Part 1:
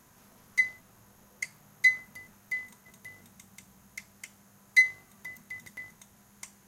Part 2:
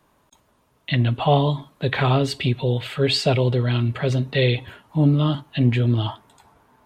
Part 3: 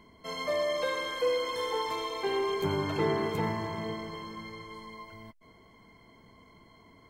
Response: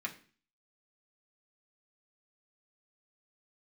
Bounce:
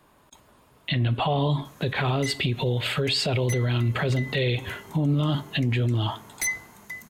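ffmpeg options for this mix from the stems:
-filter_complex "[0:a]aeval=exprs='0.15*sin(PI/2*2.24*val(0)/0.15)':c=same,adelay=1650,volume=-5.5dB[a];[1:a]bandreject=f=5.9k:w=12,dynaudnorm=f=140:g=5:m=3.5dB,volume=2.5dB,asplit=2[b][c];[c]volume=-17dB[d];[2:a]adelay=2250,volume=-19dB[e];[3:a]atrim=start_sample=2205[f];[d][f]afir=irnorm=-1:irlink=0[g];[a][b][e][g]amix=inputs=4:normalize=0,alimiter=limit=-16dB:level=0:latency=1:release=112"

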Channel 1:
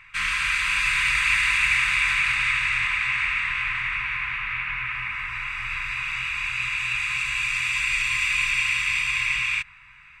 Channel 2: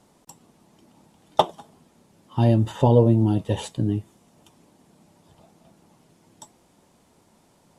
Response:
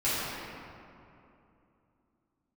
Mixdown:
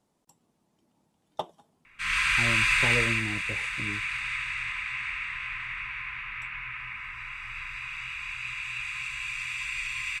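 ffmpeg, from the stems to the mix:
-filter_complex "[0:a]dynaudnorm=f=160:g=3:m=9dB,adelay=1850,volume=-8.5dB,afade=t=out:st=2.94:d=0.29:silence=0.354813[a];[1:a]volume=-15dB[b];[a][b]amix=inputs=2:normalize=0"

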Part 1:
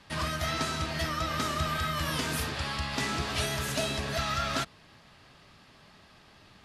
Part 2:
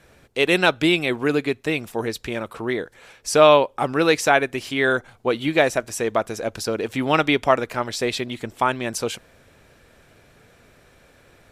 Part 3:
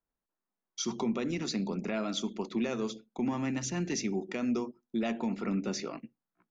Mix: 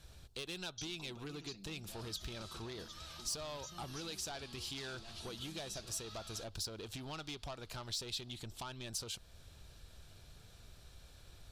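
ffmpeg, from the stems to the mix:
-filter_complex "[0:a]adelay=1800,volume=-8.5dB[a];[1:a]lowshelf=f=180:g=9.5,acompressor=threshold=-22dB:ratio=6,asoftclip=type=tanh:threshold=-23dB,volume=-3.5dB[b];[2:a]aecho=1:1:5.9:0.65,alimiter=level_in=2dB:limit=-24dB:level=0:latency=1,volume=-2dB,volume=-3dB[c];[a][c]amix=inputs=2:normalize=0,acompressor=threshold=-45dB:ratio=2.5,volume=0dB[d];[b][d]amix=inputs=2:normalize=0,equalizer=f=125:t=o:w=1:g=-5,equalizer=f=250:t=o:w=1:g=-10,equalizer=f=500:t=o:w=1:g=-9,equalizer=f=1k:t=o:w=1:g=-3,equalizer=f=2k:t=o:w=1:g=-12,equalizer=f=4k:t=o:w=1:g=7,acompressor=threshold=-49dB:ratio=1.5"

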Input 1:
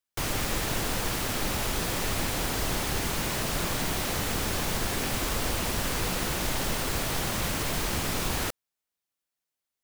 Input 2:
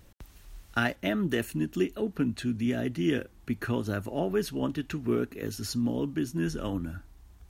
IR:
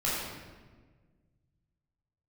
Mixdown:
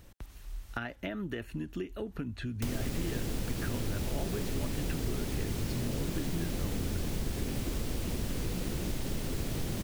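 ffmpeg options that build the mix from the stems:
-filter_complex "[0:a]acrossover=split=460|1800[a][b][c];[a]acompressor=threshold=-30dB:ratio=4[d];[b]acompressor=threshold=-59dB:ratio=4[e];[c]acompressor=threshold=-46dB:ratio=4[f];[d][e][f]amix=inputs=3:normalize=0,adelay=2450,volume=3dB[g];[1:a]acrossover=split=3800[h][i];[i]acompressor=threshold=-56dB:ratio=4:attack=1:release=60[j];[h][j]amix=inputs=2:normalize=0,asubboost=boost=6.5:cutoff=87,acompressor=threshold=-34dB:ratio=6,volume=1dB[k];[g][k]amix=inputs=2:normalize=0,acompressor=threshold=-33dB:ratio=1.5"

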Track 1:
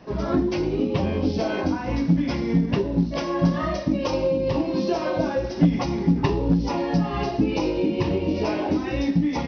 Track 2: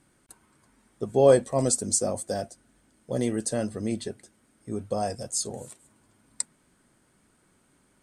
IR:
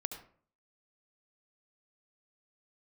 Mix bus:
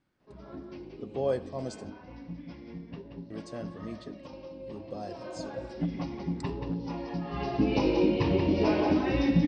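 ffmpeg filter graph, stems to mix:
-filter_complex "[0:a]adelay=200,volume=-2.5dB,afade=t=in:st=4.98:d=0.7:silence=0.375837,afade=t=in:st=7.22:d=0.58:silence=0.281838,asplit=2[a][b];[b]volume=-6dB[c];[1:a]volume=-14dB,asplit=3[d][e][f];[d]atrim=end=1.9,asetpts=PTS-STARTPTS,afade=t=out:st=1.896:d=0.004:c=hsin[g];[e]atrim=start=1.9:end=3.3,asetpts=PTS-STARTPTS,volume=0[h];[f]atrim=start=3.3,asetpts=PTS-STARTPTS,afade=t=in:d=0.004:c=hsin[i];[g][h][i]concat=n=3:v=0:a=1,asplit=2[j][k];[k]volume=-8.5dB[l];[2:a]atrim=start_sample=2205[m];[l][m]afir=irnorm=-1:irlink=0[n];[c]aecho=0:1:180:1[o];[a][j][n][o]amix=inputs=4:normalize=0,lowpass=f=5.3k:w=0.5412,lowpass=f=5.3k:w=1.3066"

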